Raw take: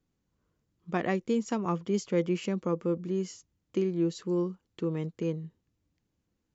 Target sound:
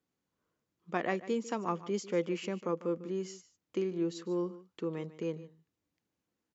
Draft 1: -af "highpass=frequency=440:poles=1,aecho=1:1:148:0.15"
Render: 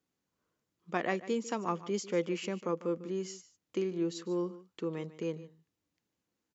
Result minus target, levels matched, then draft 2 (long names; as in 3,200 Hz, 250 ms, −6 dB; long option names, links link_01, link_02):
8,000 Hz band +3.0 dB
-af "highpass=frequency=440:poles=1,highshelf=frequency=3000:gain=-4,aecho=1:1:148:0.15"